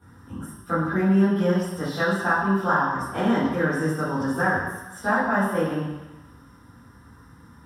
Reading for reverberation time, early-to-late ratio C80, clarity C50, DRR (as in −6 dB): 1.1 s, 3.0 dB, 0.5 dB, −14.0 dB